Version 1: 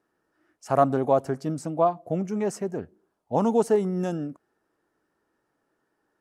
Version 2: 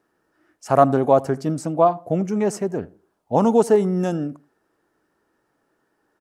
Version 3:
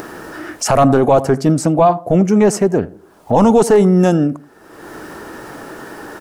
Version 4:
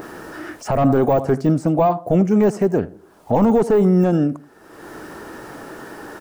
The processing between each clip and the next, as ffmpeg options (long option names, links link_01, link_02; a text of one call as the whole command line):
ffmpeg -i in.wav -filter_complex "[0:a]asplit=2[link_01][link_02];[link_02]adelay=81,lowpass=frequency=1600:poles=1,volume=-20.5dB,asplit=2[link_03][link_04];[link_04]adelay=81,lowpass=frequency=1600:poles=1,volume=0.27[link_05];[link_01][link_03][link_05]amix=inputs=3:normalize=0,volume=5.5dB" out.wav
ffmpeg -i in.wav -af "acompressor=mode=upward:threshold=-21dB:ratio=2.5,apsyclip=15.5dB,volume=-5dB" out.wav
ffmpeg -i in.wav -af "deesser=0.9,volume=-3dB" out.wav